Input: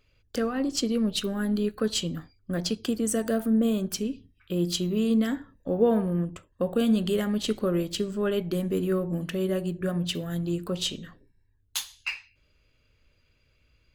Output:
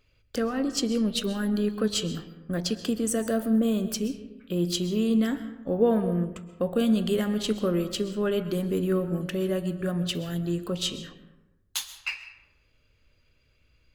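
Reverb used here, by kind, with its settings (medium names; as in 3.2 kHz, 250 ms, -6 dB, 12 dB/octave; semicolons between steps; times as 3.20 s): algorithmic reverb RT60 1 s, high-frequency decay 0.5×, pre-delay 90 ms, DRR 12 dB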